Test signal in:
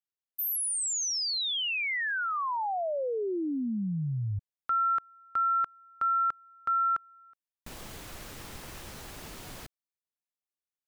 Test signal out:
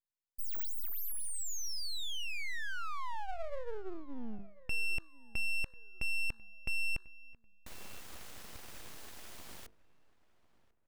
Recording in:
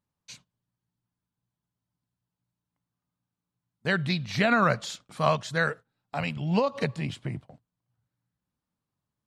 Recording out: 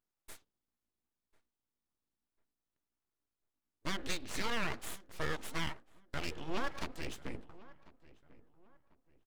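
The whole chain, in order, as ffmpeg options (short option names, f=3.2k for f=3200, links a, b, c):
-filter_complex "[0:a]equalizer=f=150:t=o:w=0.38:g=-6.5,bandreject=f=50:t=h:w=6,bandreject=f=100:t=h:w=6,bandreject=f=150:t=h:w=6,bandreject=f=200:t=h:w=6,bandreject=f=250:t=h:w=6,bandreject=f=300:t=h:w=6,bandreject=f=350:t=h:w=6,bandreject=f=400:t=h:w=6,alimiter=limit=-19.5dB:level=0:latency=1:release=148,aeval=exprs='abs(val(0))':c=same,asplit=2[a][b];[b]adelay=1044,lowpass=f=1.7k:p=1,volume=-19.5dB,asplit=2[c][d];[d]adelay=1044,lowpass=f=1.7k:p=1,volume=0.36,asplit=2[e][f];[f]adelay=1044,lowpass=f=1.7k:p=1,volume=0.36[g];[a][c][e][g]amix=inputs=4:normalize=0,volume=-3.5dB"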